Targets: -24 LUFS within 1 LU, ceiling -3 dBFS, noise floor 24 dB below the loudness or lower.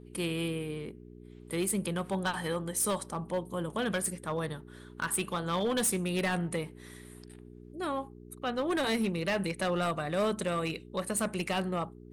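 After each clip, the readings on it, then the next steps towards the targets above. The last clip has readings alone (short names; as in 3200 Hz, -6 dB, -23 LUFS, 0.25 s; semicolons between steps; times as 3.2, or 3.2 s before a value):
clipped 1.5%; flat tops at -24.5 dBFS; hum 60 Hz; harmonics up to 420 Hz; hum level -50 dBFS; loudness -32.5 LUFS; peak -24.5 dBFS; loudness target -24.0 LUFS
-> clip repair -24.5 dBFS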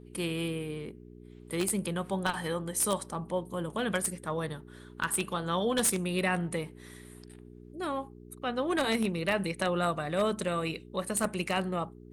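clipped 0.0%; hum 60 Hz; harmonics up to 420 Hz; hum level -50 dBFS
-> de-hum 60 Hz, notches 7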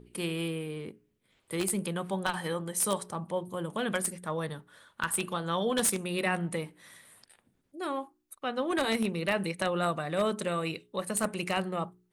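hum none; loudness -31.5 LUFS; peak -14.5 dBFS; loudness target -24.0 LUFS
-> gain +7.5 dB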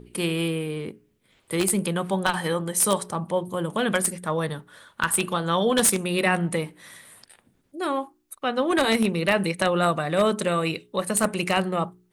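loudness -24.0 LUFS; peak -7.0 dBFS; noise floor -66 dBFS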